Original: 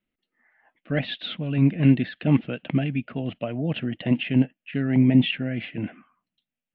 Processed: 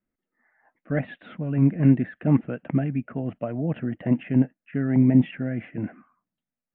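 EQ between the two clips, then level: low-pass 1.8 kHz 24 dB/octave; 0.0 dB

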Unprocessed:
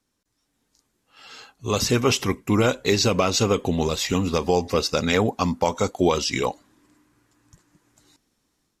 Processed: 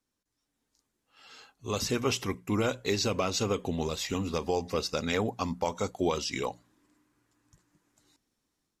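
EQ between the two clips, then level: hum notches 60/120/180 Hz; -8.5 dB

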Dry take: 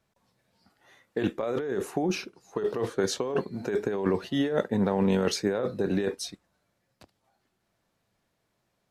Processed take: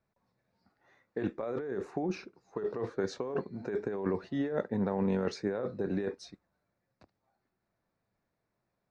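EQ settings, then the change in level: distance through air 150 m; peaking EQ 3.1 kHz -12 dB 0.35 oct; -5.5 dB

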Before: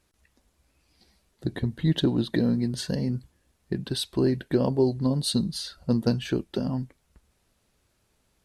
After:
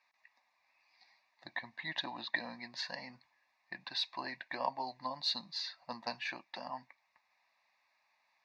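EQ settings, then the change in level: Butterworth band-pass 1.7 kHz, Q 0.69; static phaser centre 2.1 kHz, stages 8; +5.0 dB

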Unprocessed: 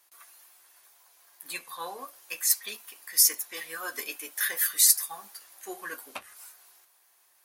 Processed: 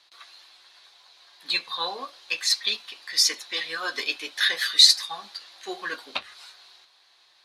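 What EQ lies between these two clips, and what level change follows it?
resonant low-pass 4 kHz, resonance Q 5.1; +5.0 dB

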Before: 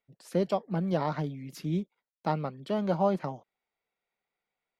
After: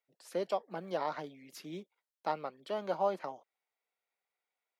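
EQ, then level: high-pass 440 Hz 12 dB/octave; -3.0 dB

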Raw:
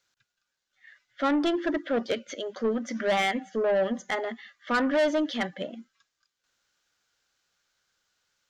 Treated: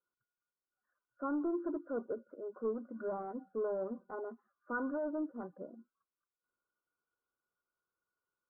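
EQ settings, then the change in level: rippled Chebyshev low-pass 1.5 kHz, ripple 9 dB; -7.0 dB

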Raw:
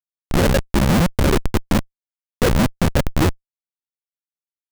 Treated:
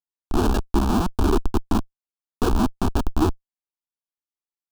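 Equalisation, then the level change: treble shelf 4.4 kHz -10.5 dB; static phaser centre 540 Hz, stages 6; 0.0 dB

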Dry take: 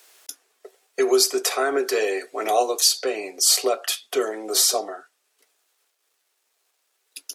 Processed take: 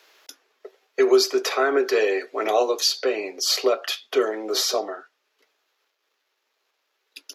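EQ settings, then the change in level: boxcar filter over 5 samples; high-pass 170 Hz; band-stop 720 Hz, Q 12; +2.5 dB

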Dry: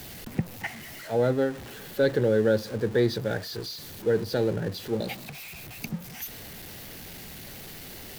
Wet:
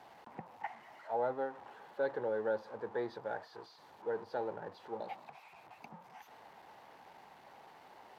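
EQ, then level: band-pass filter 900 Hz, Q 4.1; +2.5 dB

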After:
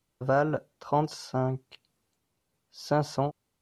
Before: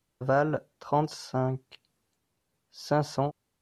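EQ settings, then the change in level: band-stop 1.7 kHz, Q 16; 0.0 dB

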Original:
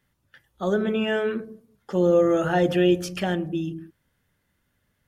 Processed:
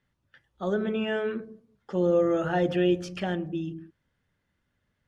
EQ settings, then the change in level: distance through air 73 m; -4.0 dB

